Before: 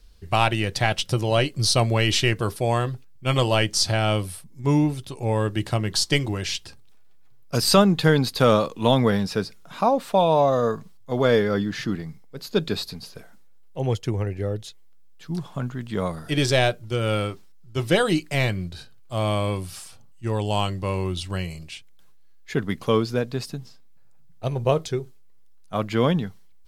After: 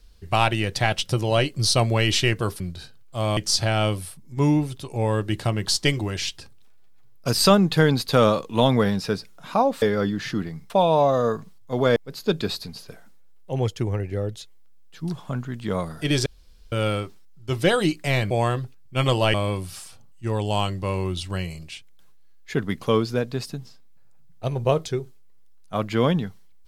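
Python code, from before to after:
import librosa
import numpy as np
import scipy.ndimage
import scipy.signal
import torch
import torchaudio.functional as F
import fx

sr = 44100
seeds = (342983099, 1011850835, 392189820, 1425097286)

y = fx.edit(x, sr, fx.swap(start_s=2.6, length_s=1.04, other_s=18.57, other_length_s=0.77),
    fx.move(start_s=11.35, length_s=0.88, to_s=10.09),
    fx.room_tone_fill(start_s=16.53, length_s=0.46), tone=tone)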